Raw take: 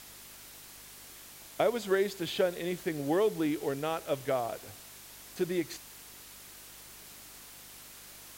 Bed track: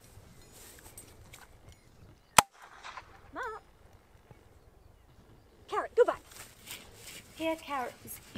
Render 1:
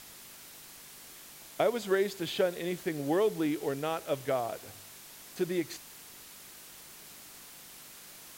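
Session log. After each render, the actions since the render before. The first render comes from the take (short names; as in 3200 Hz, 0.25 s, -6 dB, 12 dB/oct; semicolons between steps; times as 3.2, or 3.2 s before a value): de-hum 50 Hz, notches 2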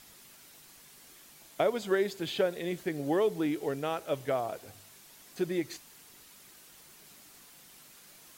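denoiser 6 dB, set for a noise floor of -51 dBFS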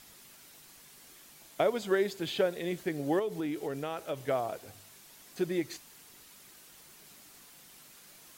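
3.19–4.26 compressor 3:1, threshold -31 dBFS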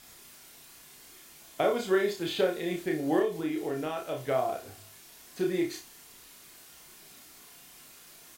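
doubler 32 ms -3.5 dB; flutter echo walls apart 5 m, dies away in 0.24 s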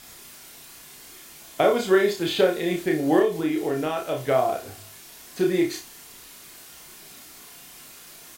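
gain +7 dB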